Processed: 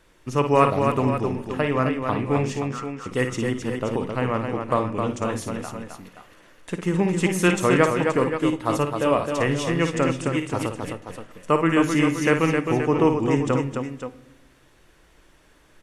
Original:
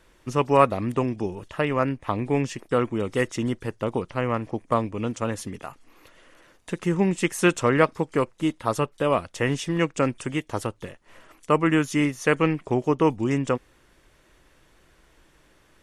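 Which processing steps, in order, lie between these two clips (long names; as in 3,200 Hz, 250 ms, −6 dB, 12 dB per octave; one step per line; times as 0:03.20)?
0:02.60–0:03.06: four-pole ladder band-pass 1,400 Hz, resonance 50%
multi-tap delay 55/263/526/530 ms −8/−5.5/−10.5/−19 dB
on a send at −13 dB: convolution reverb RT60 0.95 s, pre-delay 7 ms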